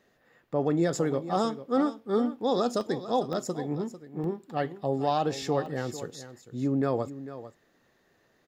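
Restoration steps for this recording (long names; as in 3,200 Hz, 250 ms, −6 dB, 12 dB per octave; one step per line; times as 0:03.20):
repair the gap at 0:02.81/0:03.33/0:04.24/0:05.66, 1.3 ms
echo removal 447 ms −13.5 dB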